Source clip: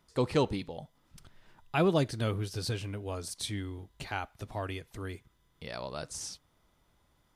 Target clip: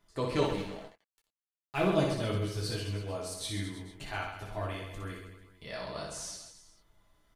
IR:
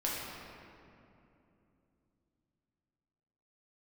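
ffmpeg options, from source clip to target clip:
-filter_complex "[0:a]aecho=1:1:60|132|218.4|322.1|446.5:0.631|0.398|0.251|0.158|0.1,asettb=1/sr,asplit=3[a][b][c];[a]atrim=end=0.454[d];[b]atrim=start=0.45:end=1.9,asetpts=PTS-STARTPTS,afade=t=in:d=0.004:c=qsin,afade=t=out:st=1.446:d=0.004:c=qsin,aeval=exprs='sgn(val(0))*max(abs(val(0))-0.00841,0)':c=same[e];[c]atrim=start=1.896[f];[d][e]acrossfade=d=0.004:c1=hsin:c2=qsin[g];[g][f]acrossfade=d=0.004:c1=qsin:c2=hsin[h];[1:a]atrim=start_sample=2205,atrim=end_sample=3087,asetrate=88200,aresample=44100[i];[h][i]afir=irnorm=-1:irlink=0,volume=1.5dB"

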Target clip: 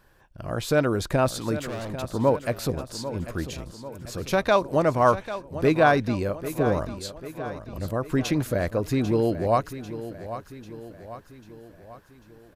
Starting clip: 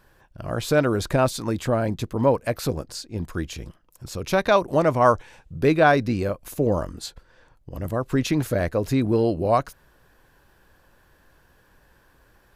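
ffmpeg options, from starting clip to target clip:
-filter_complex "[0:a]asettb=1/sr,asplit=3[a][b][c];[a]atrim=end=1.604[d];[b]atrim=start=1.6:end=2.04,asetpts=PTS-STARTPTS,afade=t=in:d=0.004:c=qsin,afade=t=out:st=0.436:d=0.004:c=qsin,volume=30dB,asoftclip=hard,volume=-30dB[e];[c]atrim=start=2.036[f];[d][e]acrossfade=d=0.004:c1=hsin:c2=qsin[g];[g][f]acrossfade=d=0.004:c1=qsin:c2=hsin,aecho=1:1:794|1588|2382|3176|3970:0.237|0.123|0.0641|0.0333|0.0173,volume=-2dB"

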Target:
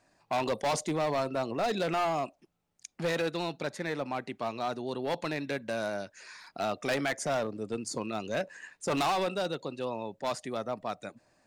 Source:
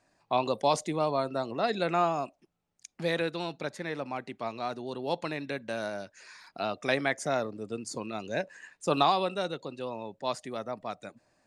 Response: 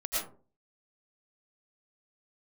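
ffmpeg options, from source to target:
-af "asoftclip=type=hard:threshold=-27dB,volume=2dB"

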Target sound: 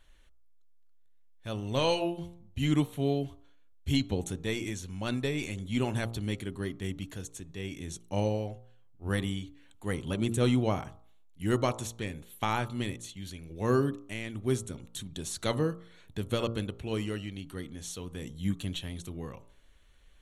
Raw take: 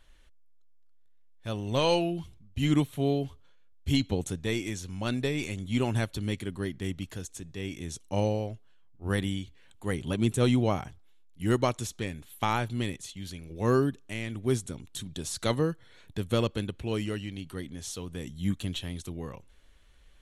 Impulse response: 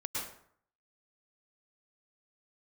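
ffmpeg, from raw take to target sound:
-af "bandreject=f=5k:w=7.5,bandreject=f=57.62:t=h:w=4,bandreject=f=115.24:t=h:w=4,bandreject=f=172.86:t=h:w=4,bandreject=f=230.48:t=h:w=4,bandreject=f=288.1:t=h:w=4,bandreject=f=345.72:t=h:w=4,bandreject=f=403.34:t=h:w=4,bandreject=f=460.96:t=h:w=4,bandreject=f=518.58:t=h:w=4,bandreject=f=576.2:t=h:w=4,bandreject=f=633.82:t=h:w=4,bandreject=f=691.44:t=h:w=4,bandreject=f=749.06:t=h:w=4,bandreject=f=806.68:t=h:w=4,bandreject=f=864.3:t=h:w=4,bandreject=f=921.92:t=h:w=4,bandreject=f=979.54:t=h:w=4,bandreject=f=1.03716k:t=h:w=4,bandreject=f=1.09478k:t=h:w=4,bandreject=f=1.1524k:t=h:w=4,bandreject=f=1.21002k:t=h:w=4,bandreject=f=1.26764k:t=h:w=4,bandreject=f=1.32526k:t=h:w=4,bandreject=f=1.38288k:t=h:w=4,volume=-1.5dB"

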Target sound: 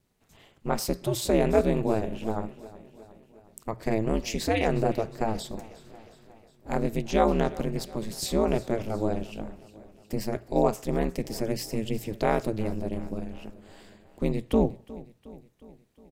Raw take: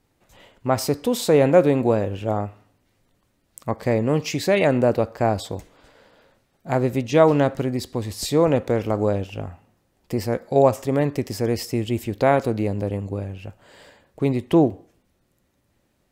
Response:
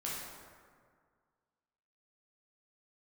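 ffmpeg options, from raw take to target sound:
-af "aeval=exprs='val(0)*sin(2*PI*110*n/s)':c=same,equalizer=f=820:w=0.31:g=-5,bandreject=f=60:t=h:w=6,bandreject=f=120:t=h:w=6,aecho=1:1:361|722|1083|1444|1805:0.112|0.0662|0.0391|0.023|0.0136"

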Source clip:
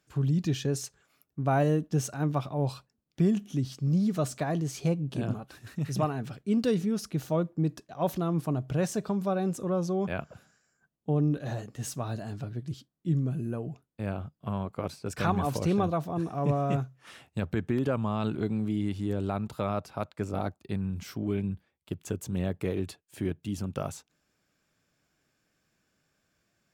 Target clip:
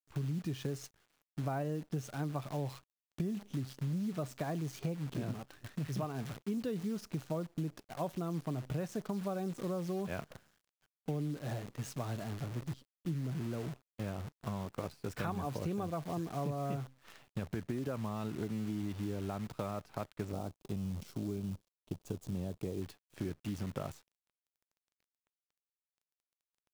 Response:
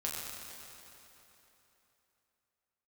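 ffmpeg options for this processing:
-filter_complex "[0:a]aemphasis=mode=reproduction:type=50kf,acrusher=bits=8:dc=4:mix=0:aa=0.000001,acompressor=threshold=-31dB:ratio=6,asettb=1/sr,asplit=3[a][b][c];[a]atrim=end=20.324[d];[b]atrim=start=20.32:end=22.82,asetpts=PTS-STARTPTS,afade=t=in:d=0.004:c=qsin,afade=t=out:st=2.496:d=0.004:c=qsin,equalizer=f=1.8k:w=0.97:g=-10.5[e];[c]atrim=start=22.816[f];[d][e]acrossfade=d=0.004:c1=hsin:c2=qsin[g];[g][f]acrossfade=d=0.004:c1=qsin:c2=hsin,volume=-2.5dB"

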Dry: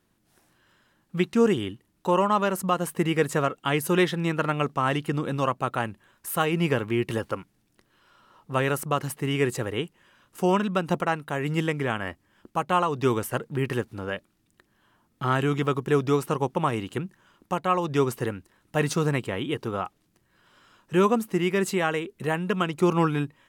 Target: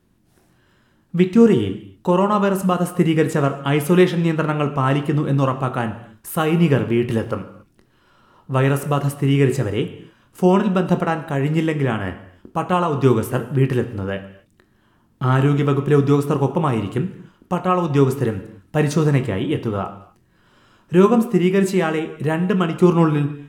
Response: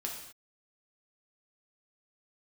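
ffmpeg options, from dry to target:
-filter_complex "[0:a]lowshelf=f=430:g=9.5,asplit=2[a][b];[1:a]atrim=start_sample=2205,highshelf=f=8.8k:g=-9,adelay=22[c];[b][c]afir=irnorm=-1:irlink=0,volume=-8dB[d];[a][d]amix=inputs=2:normalize=0,volume=1dB"

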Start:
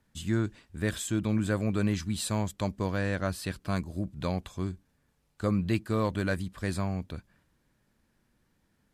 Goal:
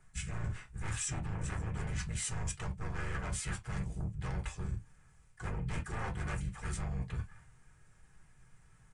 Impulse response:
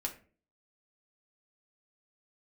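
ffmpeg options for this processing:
-filter_complex "[0:a]asplit=4[a][b][c][d];[b]asetrate=22050,aresample=44100,atempo=2,volume=-7dB[e];[c]asetrate=33038,aresample=44100,atempo=1.33484,volume=-1dB[f];[d]asetrate=52444,aresample=44100,atempo=0.840896,volume=-13dB[g];[a][e][f][g]amix=inputs=4:normalize=0,asplit=2[h][i];[i]aeval=exprs='0.299*sin(PI/2*5.01*val(0)/0.299)':c=same,volume=-4.5dB[j];[h][j]amix=inputs=2:normalize=0,aresample=22050,aresample=44100,equalizer=f=125:t=o:w=1:g=7,equalizer=f=250:t=o:w=1:g=-10,equalizer=f=500:t=o:w=1:g=-6,equalizer=f=2k:t=o:w=1:g=4,equalizer=f=4k:t=o:w=1:g=-10,equalizer=f=8k:t=o:w=1:g=7[k];[1:a]atrim=start_sample=2205,afade=t=out:st=0.17:d=0.01,atrim=end_sample=7938,asetrate=74970,aresample=44100[l];[k][l]afir=irnorm=-1:irlink=0,areverse,acompressor=threshold=-27dB:ratio=6,areverse,volume=-7dB"

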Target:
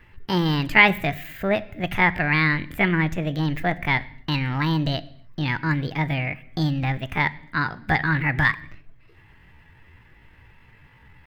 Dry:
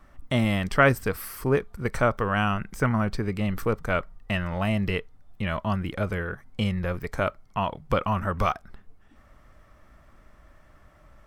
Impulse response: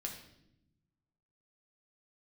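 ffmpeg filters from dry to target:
-filter_complex "[0:a]asetrate=66075,aresample=44100,atempo=0.66742,equalizer=f=125:t=o:w=1:g=7,equalizer=f=2k:t=o:w=1:g=8,equalizer=f=8k:t=o:w=1:g=-6,asplit=2[a][b];[1:a]atrim=start_sample=2205,afade=t=out:st=0.34:d=0.01,atrim=end_sample=15435[c];[b][c]afir=irnorm=-1:irlink=0,volume=-9.5dB[d];[a][d]amix=inputs=2:normalize=0,volume=-2.5dB"

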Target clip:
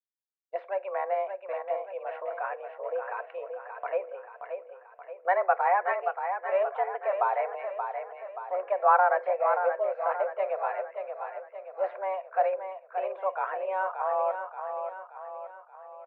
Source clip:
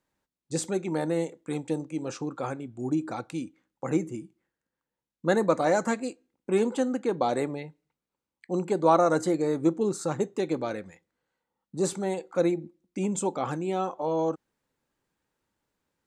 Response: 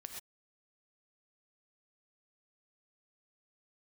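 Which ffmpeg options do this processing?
-af "highpass=f=350:t=q:w=0.5412,highpass=f=350:t=q:w=1.307,lowpass=f=2.2k:t=q:w=0.5176,lowpass=f=2.2k:t=q:w=0.7071,lowpass=f=2.2k:t=q:w=1.932,afreqshift=190,agate=range=-33dB:threshold=-45dB:ratio=3:detection=peak,aecho=1:1:578|1156|1734|2312|2890|3468:0.447|0.223|0.112|0.0558|0.0279|0.014"

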